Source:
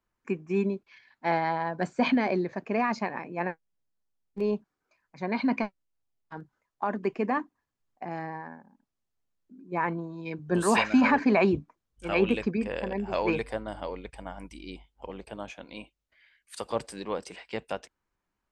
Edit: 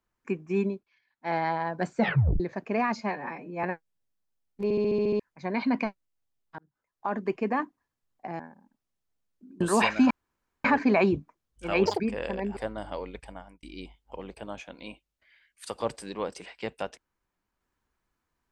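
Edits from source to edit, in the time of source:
0.65–1.41 dip -14.5 dB, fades 0.25 s
1.98 tape stop 0.42 s
2.96–3.41 stretch 1.5×
4.41 stutter in place 0.07 s, 8 plays
6.36–6.92 fade in
8.17–8.48 cut
9.69–10.55 cut
11.05 insert room tone 0.54 s
12.26–12.53 speed 190%
13.1–13.47 cut
14.14–14.53 fade out

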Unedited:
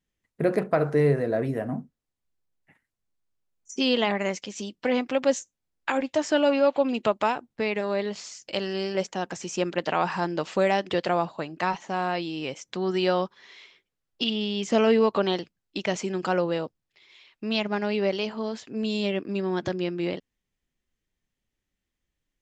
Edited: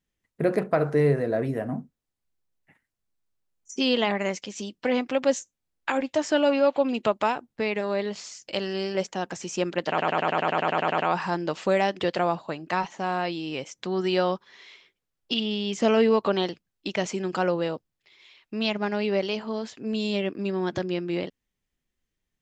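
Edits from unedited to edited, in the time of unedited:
9.88 stutter 0.10 s, 12 plays

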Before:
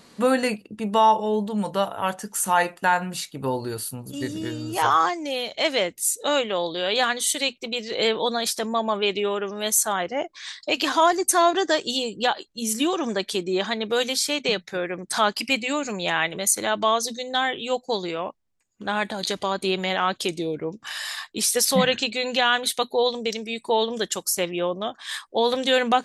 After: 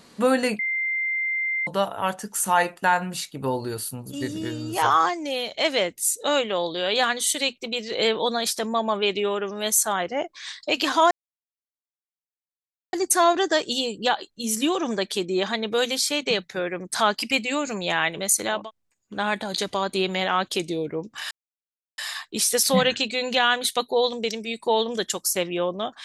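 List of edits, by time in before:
0.59–1.67 bleep 2090 Hz -22.5 dBFS
11.11 insert silence 1.82 s
16.77–18.28 cut, crossfade 0.24 s
21 insert silence 0.67 s

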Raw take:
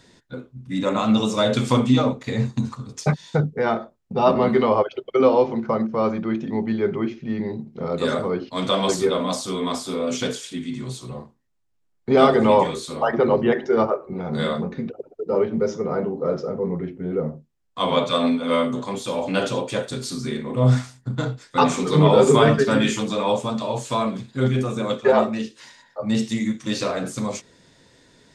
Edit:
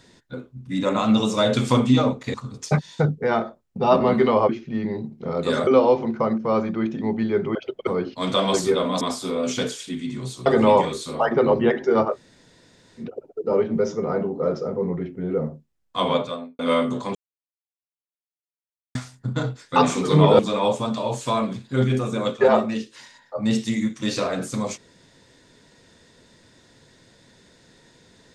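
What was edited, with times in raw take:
2.34–2.69 cut
4.84–5.16 swap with 7.04–8.22
9.36–9.65 cut
11.1–12.28 cut
13.95–14.84 room tone, crossfade 0.10 s
17.82–18.41 studio fade out
18.97–20.77 mute
22.21–23.03 cut

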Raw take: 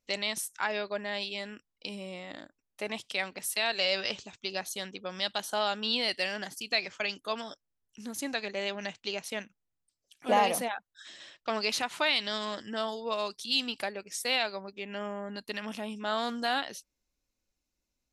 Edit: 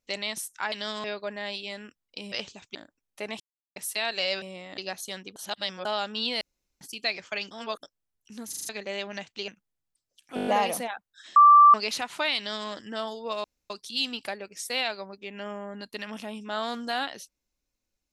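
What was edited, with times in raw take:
2–2.36 swap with 4.03–4.46
3.01–3.37 mute
5.04–5.53 reverse
6.09–6.49 room tone
7.19–7.51 reverse
8.17 stutter in place 0.04 s, 5 plays
9.16–9.41 cut
10.28 stutter 0.02 s, 7 plays
11.17–11.55 bleep 1170 Hz -10.5 dBFS
12.18–12.5 copy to 0.72
13.25 insert room tone 0.26 s

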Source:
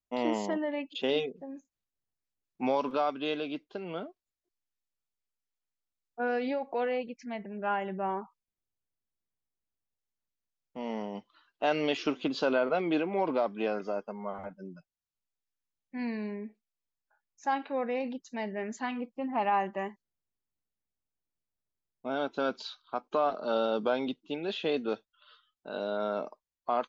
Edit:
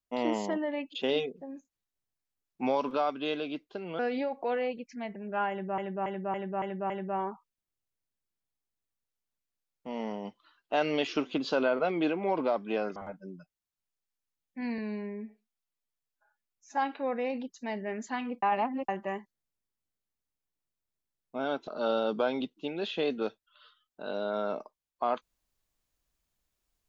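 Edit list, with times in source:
3.99–6.29 cut
7.8–8.08 loop, 6 plays
13.86–14.33 cut
16.15–17.48 stretch 1.5×
19.13–19.59 reverse
22.38–23.34 cut

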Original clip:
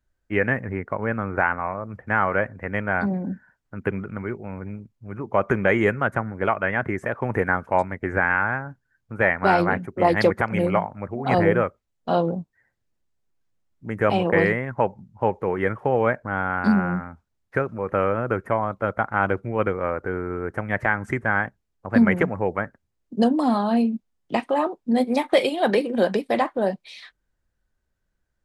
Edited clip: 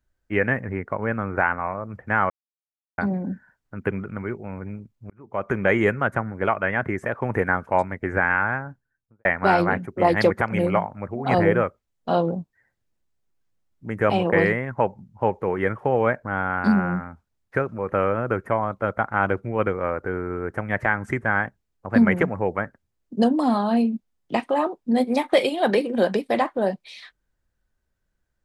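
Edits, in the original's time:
2.3–2.98 mute
5.1–5.7 fade in
8.57–9.25 studio fade out

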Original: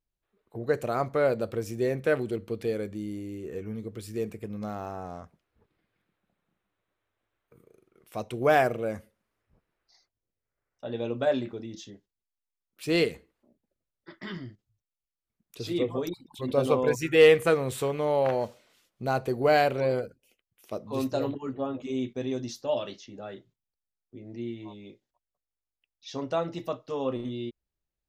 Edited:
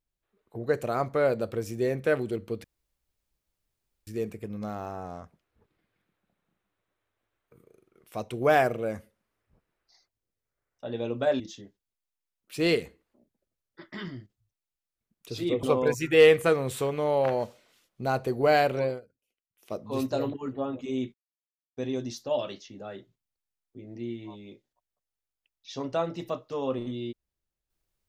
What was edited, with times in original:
2.64–4.07 room tone
11.4–11.69 cut
15.92–16.64 cut
19.82–20.73 dip -17 dB, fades 0.20 s
22.15 insert silence 0.63 s

